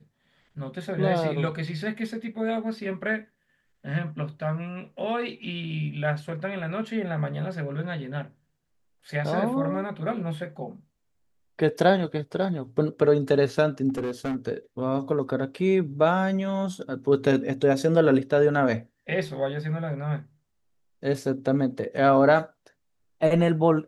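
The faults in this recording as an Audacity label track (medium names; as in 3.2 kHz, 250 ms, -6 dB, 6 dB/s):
13.890000	14.360000	clipped -25 dBFS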